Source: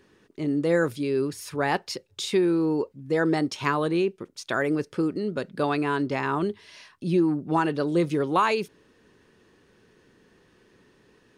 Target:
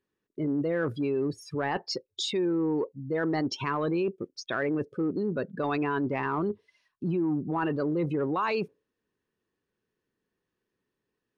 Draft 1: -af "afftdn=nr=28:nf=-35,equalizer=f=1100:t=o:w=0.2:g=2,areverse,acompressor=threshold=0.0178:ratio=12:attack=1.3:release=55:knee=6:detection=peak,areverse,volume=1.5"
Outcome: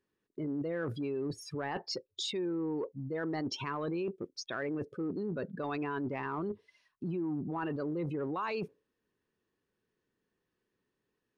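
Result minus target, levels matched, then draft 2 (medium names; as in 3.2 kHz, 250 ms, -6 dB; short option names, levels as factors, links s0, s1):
compression: peak gain reduction +7.5 dB
-af "afftdn=nr=28:nf=-35,equalizer=f=1100:t=o:w=0.2:g=2,areverse,acompressor=threshold=0.0447:ratio=12:attack=1.3:release=55:knee=6:detection=peak,areverse,volume=1.5"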